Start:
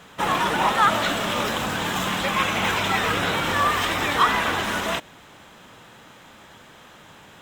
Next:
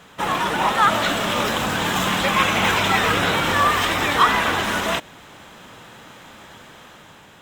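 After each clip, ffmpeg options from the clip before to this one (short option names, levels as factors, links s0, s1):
-af "dynaudnorm=f=230:g=7:m=1.68"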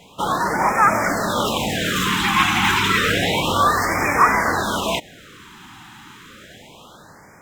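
-af "afftfilt=real='re*(1-between(b*sr/1024,510*pow(3600/510,0.5+0.5*sin(2*PI*0.3*pts/sr))/1.41,510*pow(3600/510,0.5+0.5*sin(2*PI*0.3*pts/sr))*1.41))':imag='im*(1-between(b*sr/1024,510*pow(3600/510,0.5+0.5*sin(2*PI*0.3*pts/sr))/1.41,510*pow(3600/510,0.5+0.5*sin(2*PI*0.3*pts/sr))*1.41))':win_size=1024:overlap=0.75,volume=1.19"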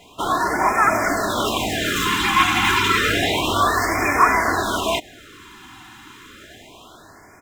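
-af "aecho=1:1:2.9:0.54,volume=0.891"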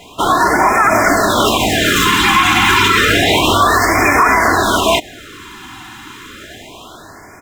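-af "alimiter=level_in=3.16:limit=0.891:release=50:level=0:latency=1,volume=0.891"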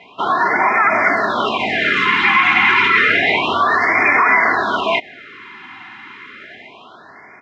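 -af "highpass=210,equalizer=f=310:t=q:w=4:g=-7,equalizer=f=530:t=q:w=4:g=-5,equalizer=f=2100:t=q:w=4:g=9,equalizer=f=3500:t=q:w=4:g=-6,lowpass=f=3800:w=0.5412,lowpass=f=3800:w=1.3066,volume=0.668"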